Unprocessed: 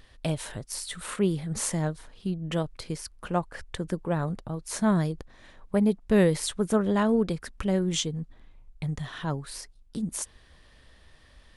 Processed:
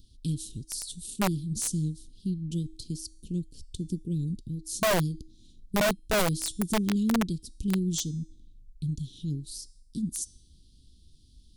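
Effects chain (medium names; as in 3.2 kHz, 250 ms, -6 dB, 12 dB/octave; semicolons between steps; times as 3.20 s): inverse Chebyshev band-stop 630–2000 Hz, stop band 50 dB; de-hum 318.9 Hz, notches 32; integer overflow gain 20 dB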